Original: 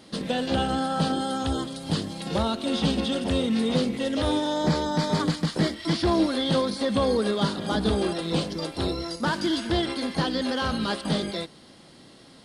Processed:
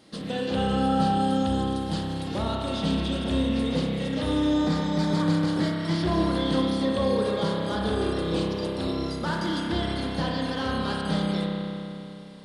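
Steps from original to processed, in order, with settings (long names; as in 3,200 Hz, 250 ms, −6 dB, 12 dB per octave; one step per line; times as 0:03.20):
spring reverb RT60 3 s, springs 30 ms, chirp 30 ms, DRR −2 dB
level −5.5 dB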